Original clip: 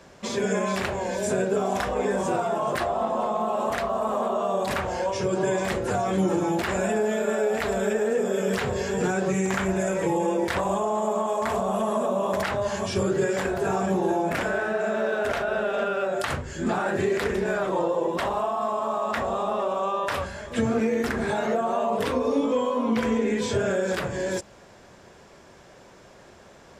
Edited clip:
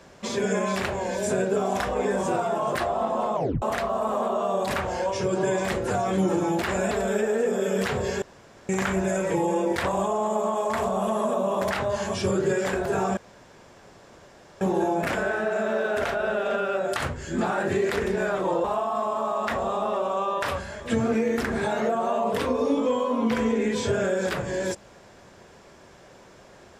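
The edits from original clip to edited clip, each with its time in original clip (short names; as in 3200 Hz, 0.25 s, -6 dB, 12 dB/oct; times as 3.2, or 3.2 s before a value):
3.35 tape stop 0.27 s
6.91–7.63 cut
8.94–9.41 room tone
13.89 insert room tone 1.44 s
17.92–18.3 cut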